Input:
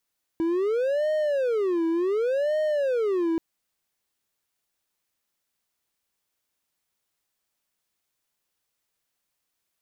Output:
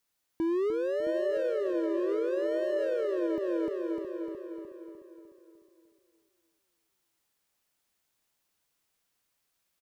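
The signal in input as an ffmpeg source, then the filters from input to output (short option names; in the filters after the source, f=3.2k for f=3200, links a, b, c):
-f lavfi -i "aevalsrc='0.106*(1-4*abs(mod((473*t-145/(2*PI*0.68)*sin(2*PI*0.68*t))+0.25,1)-0.5))':d=2.98:s=44100"
-filter_complex "[0:a]asplit=2[a][b];[b]aecho=0:1:301|602|903|1204|1505|1806:0.562|0.281|0.141|0.0703|0.0351|0.0176[c];[a][c]amix=inputs=2:normalize=0,alimiter=limit=-23dB:level=0:latency=1:release=235,asplit=2[d][e];[e]adelay=668,lowpass=f=2k:p=1,volume=-8dB,asplit=2[f][g];[g]adelay=668,lowpass=f=2k:p=1,volume=0.22,asplit=2[h][i];[i]adelay=668,lowpass=f=2k:p=1,volume=0.22[j];[f][h][j]amix=inputs=3:normalize=0[k];[d][k]amix=inputs=2:normalize=0"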